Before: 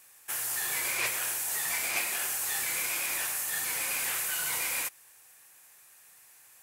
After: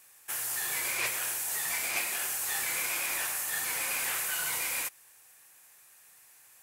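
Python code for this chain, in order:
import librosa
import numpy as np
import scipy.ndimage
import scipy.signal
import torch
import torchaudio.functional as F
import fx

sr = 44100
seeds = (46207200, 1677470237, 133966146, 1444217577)

y = fx.peak_eq(x, sr, hz=1000.0, db=2.5, octaves=2.5, at=(2.48, 4.5))
y = y * librosa.db_to_amplitude(-1.0)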